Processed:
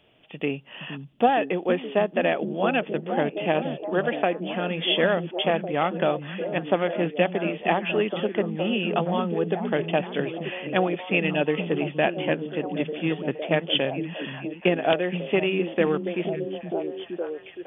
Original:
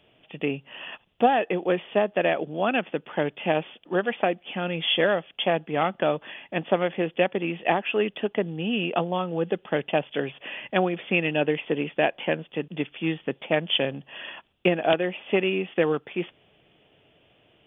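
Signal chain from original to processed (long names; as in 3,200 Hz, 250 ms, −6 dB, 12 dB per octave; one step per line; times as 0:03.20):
echo through a band-pass that steps 468 ms, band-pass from 170 Hz, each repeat 0.7 octaves, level −1.5 dB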